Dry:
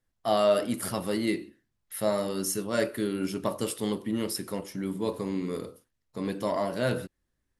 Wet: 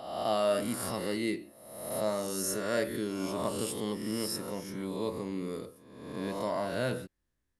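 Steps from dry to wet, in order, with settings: reverse spectral sustain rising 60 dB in 1.05 s; trim -6 dB

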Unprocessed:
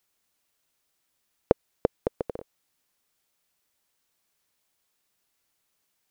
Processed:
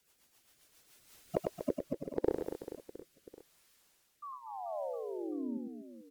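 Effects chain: coarse spectral quantiser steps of 15 dB; Doppler pass-by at 1.58 s, 35 m/s, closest 9.2 m; slow attack 399 ms; in parallel at +0.5 dB: peak limiter -43 dBFS, peak gain reduction 7 dB; on the sum: painted sound fall, 4.22–5.58 s, 220–1200 Hz -57 dBFS; on a send: reverse bouncing-ball echo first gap 100 ms, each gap 1.4×, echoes 5; on the sum: rotary cabinet horn 7.5 Hz, later 0.8 Hz, at 0.66 s; trim +18 dB

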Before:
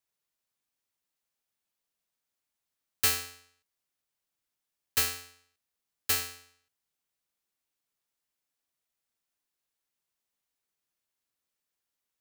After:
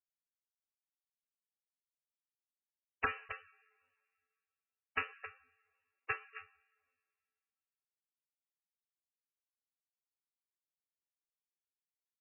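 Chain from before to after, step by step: power-law waveshaper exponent 3; on a send: delay 266 ms -16 dB; on the sum: two-slope reverb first 0.64 s, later 2.1 s, from -18 dB, DRR 15.5 dB; in parallel at -2 dB: compression 6:1, threshold -46 dBFS, peak gain reduction 18.5 dB; on the sum: overdrive pedal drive 10 dB, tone 2.5 kHz, clips at -11 dBFS; trim +6.5 dB; MP3 8 kbps 16 kHz

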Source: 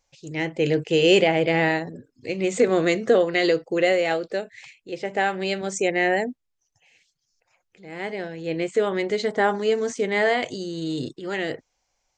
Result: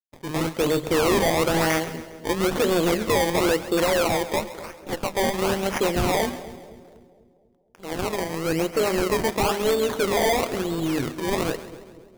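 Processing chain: 4.36–5.14 s: comb filter that takes the minimum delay 3.7 ms; peaking EQ 3.1 kHz +3.5 dB 1.1 oct; hum notches 50/100/150/200/250 Hz; in parallel at +1 dB: compression, threshold -35 dBFS, peak gain reduction 21 dB; on the sum: decimation with a swept rate 22×, swing 100% 1 Hz; hard clipper -19 dBFS, distortion -8 dB; AM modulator 160 Hz, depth 30%; crossover distortion -49.5 dBFS; 8.16–9.28 s: Butterworth band-stop 3.5 kHz, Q 7.4; two-band feedback delay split 630 Hz, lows 244 ms, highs 135 ms, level -14.5 dB; trim +3.5 dB

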